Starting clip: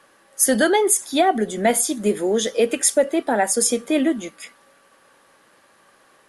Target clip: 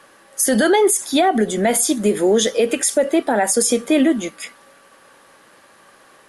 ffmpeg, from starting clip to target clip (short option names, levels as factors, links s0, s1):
-af "alimiter=level_in=4.22:limit=0.891:release=50:level=0:latency=1,volume=0.473"